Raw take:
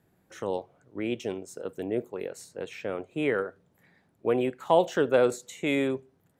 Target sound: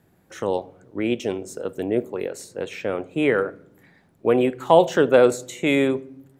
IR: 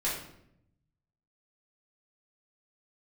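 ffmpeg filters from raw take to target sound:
-filter_complex "[0:a]asplit=2[a][b];[1:a]atrim=start_sample=2205,lowshelf=f=400:g=10.5[c];[b][c]afir=irnorm=-1:irlink=0,volume=-27dB[d];[a][d]amix=inputs=2:normalize=0,volume=6.5dB"

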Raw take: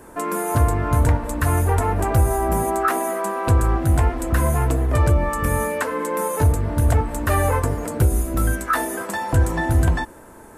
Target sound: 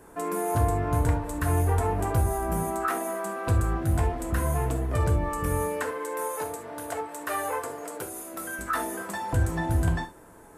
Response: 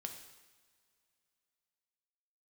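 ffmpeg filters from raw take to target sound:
-filter_complex "[0:a]asettb=1/sr,asplit=3[a][b][c];[a]atrim=end=5.914[d];[b]atrim=start=5.91:end=8.59,asetpts=PTS-STARTPTS,afade=t=in:d=0.004:c=qsin,afade=t=out:st=2.676:d=0.004:c=qsin,highpass=470[e];[c]atrim=start=8.586[f];[d][e]acrossfade=d=0.004:c1=hsin:c2=qsin[g];[g][f]acrossfade=d=0.004:c1=qsin:c2=hsin[h];[1:a]atrim=start_sample=2205,atrim=end_sample=3528[i];[h][i]afir=irnorm=-1:irlink=0,volume=-3.5dB"

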